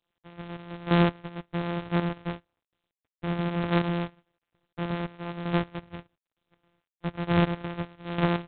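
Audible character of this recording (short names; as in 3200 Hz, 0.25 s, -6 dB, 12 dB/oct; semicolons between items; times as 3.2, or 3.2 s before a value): a buzz of ramps at a fixed pitch in blocks of 256 samples; chopped level 1.1 Hz, depth 65%, duty 20%; G.726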